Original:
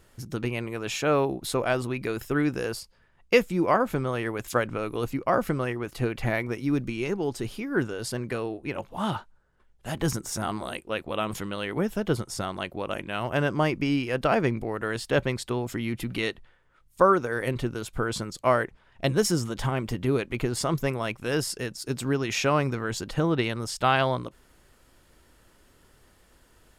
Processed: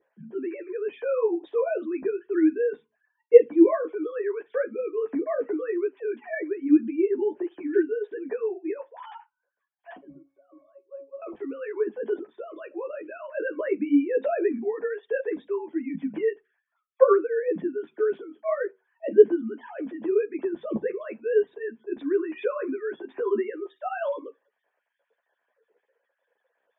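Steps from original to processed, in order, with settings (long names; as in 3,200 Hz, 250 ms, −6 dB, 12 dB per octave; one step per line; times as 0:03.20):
three sine waves on the formant tracks
0:09.97–0:11.22: resonances in every octave C#, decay 0.27 s
convolution reverb RT60 0.20 s, pre-delay 3 ms, DRR 11 dB
string-ensemble chorus
level −8.5 dB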